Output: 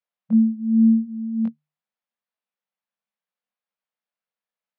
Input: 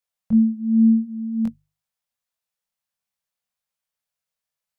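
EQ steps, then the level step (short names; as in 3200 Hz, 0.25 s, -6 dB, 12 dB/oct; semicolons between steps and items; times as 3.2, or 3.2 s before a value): brick-wall FIR high-pass 160 Hz; air absorption 280 m; 0.0 dB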